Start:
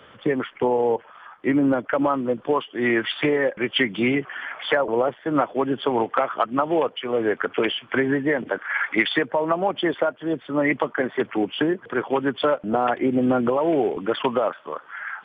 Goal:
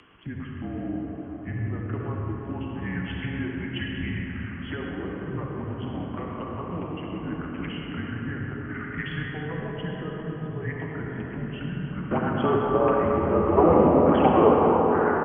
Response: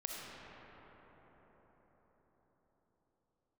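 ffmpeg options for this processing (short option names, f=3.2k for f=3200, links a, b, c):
-filter_complex "[0:a]asplit=2[a][b];[b]adelay=330,highpass=300,lowpass=3.4k,asoftclip=type=hard:threshold=-14dB,volume=-21dB[c];[a][c]amix=inputs=2:normalize=0[d];[1:a]atrim=start_sample=2205[e];[d][e]afir=irnorm=-1:irlink=0,highpass=f=260:t=q:w=0.5412,highpass=f=260:t=q:w=1.307,lowpass=f=3.2k:t=q:w=0.5176,lowpass=f=3.2k:t=q:w=0.7071,lowpass=f=3.2k:t=q:w=1.932,afreqshift=-170,acompressor=mode=upward:threshold=-36dB:ratio=2.5,asetnsamples=n=441:p=0,asendcmd='12.11 equalizer g 6.5;13.57 equalizer g 13.5',equalizer=f=730:t=o:w=2.8:g=-10,volume=-5.5dB"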